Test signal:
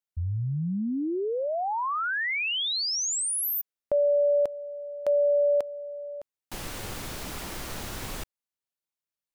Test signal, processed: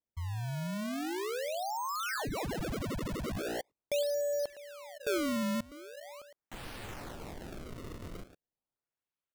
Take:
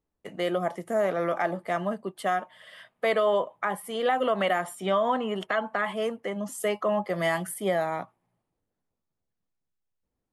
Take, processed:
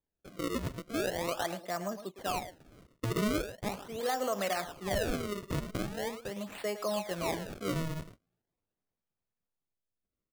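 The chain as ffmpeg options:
-filter_complex "[0:a]asplit=2[a][b];[b]adelay=110,highpass=300,lowpass=3.4k,asoftclip=type=hard:threshold=-23dB,volume=-10dB[c];[a][c]amix=inputs=2:normalize=0,acrusher=samples=31:mix=1:aa=0.000001:lfo=1:lforange=49.6:lforate=0.41,volume=-7.5dB"

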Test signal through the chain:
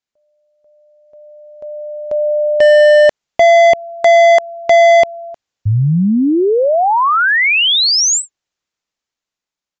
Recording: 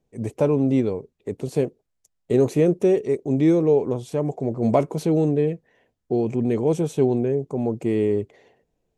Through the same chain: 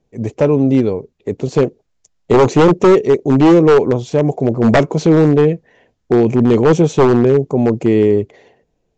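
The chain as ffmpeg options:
-af "dynaudnorm=f=480:g=7:m=7dB,aresample=16000,aeval=exprs='0.299*(abs(mod(val(0)/0.299+3,4)-2)-1)':c=same,aresample=44100,volume=7dB"

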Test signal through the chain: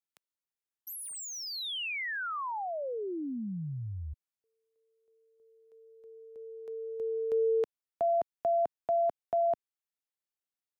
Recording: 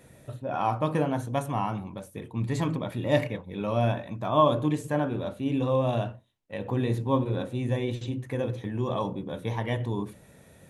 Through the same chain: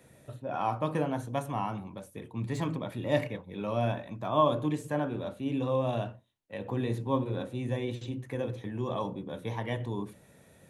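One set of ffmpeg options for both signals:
-filter_complex "[0:a]lowshelf=f=72:g=-6.5,acrossover=split=250|3500[a][b][c];[c]asoftclip=type=tanh:threshold=-36.5dB[d];[a][b][d]amix=inputs=3:normalize=0,volume=-3.5dB"

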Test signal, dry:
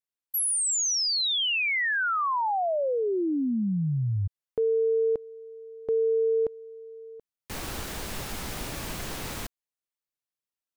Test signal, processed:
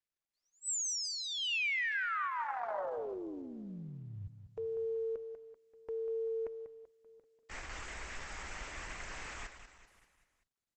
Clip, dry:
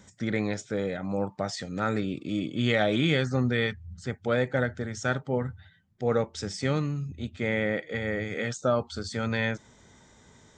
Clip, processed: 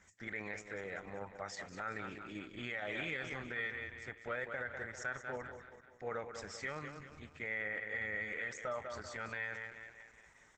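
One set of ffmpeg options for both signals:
-af "equalizer=f=125:t=o:w=1:g=-12,equalizer=f=250:t=o:w=1:g=-10,equalizer=f=500:t=o:w=1:g=-4,equalizer=f=2k:t=o:w=1:g=8,equalizer=f=4k:t=o:w=1:g=-9,aecho=1:1:193|386|579|772|965:0.316|0.155|0.0759|0.0372|0.0182,alimiter=limit=-21.5dB:level=0:latency=1:release=39,volume=-7dB" -ar 48000 -c:a libopus -b:a 12k

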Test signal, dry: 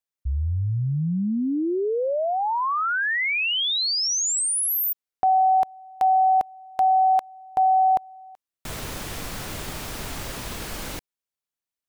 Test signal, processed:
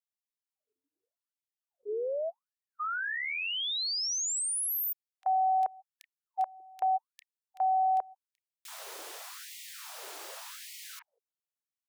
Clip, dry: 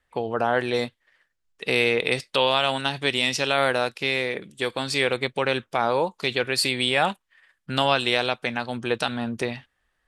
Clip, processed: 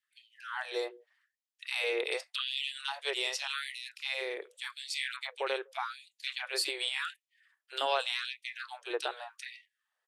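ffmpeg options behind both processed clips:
-filter_complex "[0:a]acrossover=split=250|2100[a][b][c];[b]adelay=30[d];[a]adelay=190[e];[e][d][c]amix=inputs=3:normalize=0,afftfilt=real='re*gte(b*sr/1024,300*pow(1900/300,0.5+0.5*sin(2*PI*0.86*pts/sr)))':imag='im*gte(b*sr/1024,300*pow(1900/300,0.5+0.5*sin(2*PI*0.86*pts/sr)))':win_size=1024:overlap=0.75,volume=-8dB"

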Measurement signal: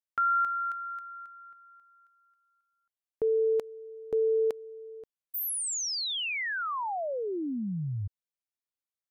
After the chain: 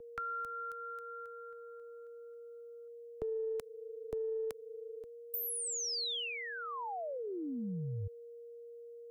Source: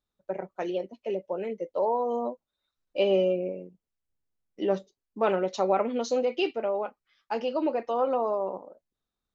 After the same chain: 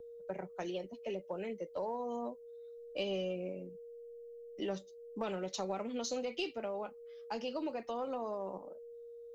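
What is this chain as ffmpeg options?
-filter_complex "[0:a]highshelf=f=6.1k:g=10,aeval=exprs='val(0)+0.00562*sin(2*PI*470*n/s)':c=same,acrossover=split=250|830|3500[a][b][c][d];[a]acompressor=threshold=-48dB:ratio=2[e];[b]acompressor=threshold=-41dB:ratio=3[f];[c]acompressor=threshold=-43dB:ratio=4[g];[d]acompressor=threshold=-35dB:ratio=6[h];[e][f][g][h]amix=inputs=4:normalize=0,lowshelf=f=120:g=11,aeval=exprs='0.106*(cos(1*acos(clip(val(0)/0.106,-1,1)))-cos(1*PI/2))+0.0119*(cos(2*acos(clip(val(0)/0.106,-1,1)))-cos(2*PI/2))+0.000668*(cos(5*acos(clip(val(0)/0.106,-1,1)))-cos(5*PI/2))+0.000841*(cos(8*acos(clip(val(0)/0.106,-1,1)))-cos(8*PI/2))':c=same,volume=-3.5dB"

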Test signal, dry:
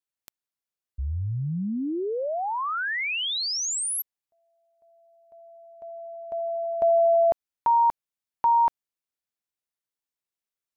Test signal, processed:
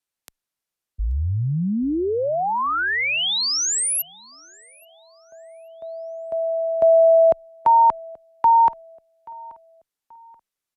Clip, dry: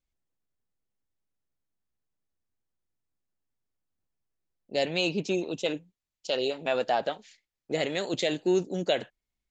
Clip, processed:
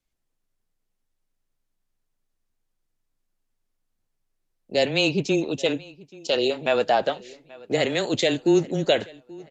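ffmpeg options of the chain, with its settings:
-filter_complex "[0:a]asplit=2[a][b];[b]adelay=831,lowpass=f=5k:p=1,volume=-22.5dB,asplit=2[c][d];[d]adelay=831,lowpass=f=5k:p=1,volume=0.37,asplit=2[e][f];[f]adelay=831,lowpass=f=5k:p=1,volume=0.37[g];[a][c][e][g]amix=inputs=4:normalize=0,afreqshift=-15,aresample=32000,aresample=44100,volume=6dB"

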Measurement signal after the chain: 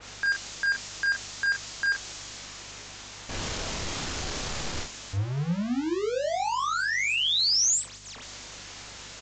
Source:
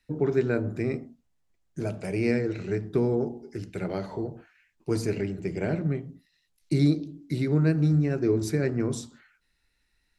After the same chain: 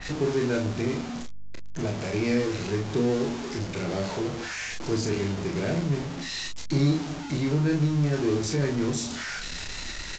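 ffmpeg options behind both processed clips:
-filter_complex "[0:a]aeval=exprs='val(0)+0.5*0.0447*sgn(val(0))':c=same,aeval=exprs='val(0)+0.00282*(sin(2*PI*50*n/s)+sin(2*PI*2*50*n/s)/2+sin(2*PI*3*50*n/s)/3+sin(2*PI*4*50*n/s)/4+sin(2*PI*5*50*n/s)/5)':c=same,asplit=2[a][b];[b]aecho=0:1:29|41:0.562|0.473[c];[a][c]amix=inputs=2:normalize=0,aresample=16000,aresample=44100,adynamicequalizer=threshold=0.0141:dfrequency=3300:dqfactor=0.7:tfrequency=3300:tqfactor=0.7:attack=5:release=100:ratio=0.375:range=3:mode=boostabove:tftype=highshelf,volume=-4dB"

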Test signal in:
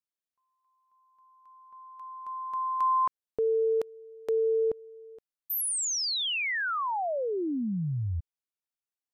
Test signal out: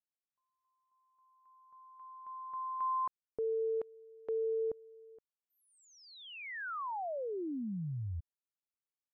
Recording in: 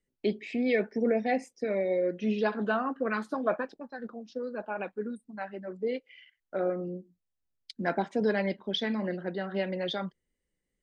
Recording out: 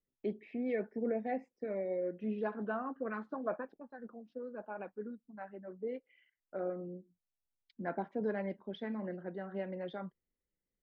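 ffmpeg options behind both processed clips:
-af "lowpass=1.6k,volume=-8dB"

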